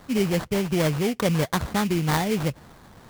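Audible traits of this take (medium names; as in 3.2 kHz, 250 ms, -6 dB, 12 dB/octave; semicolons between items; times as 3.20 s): aliases and images of a low sample rate 2.7 kHz, jitter 20%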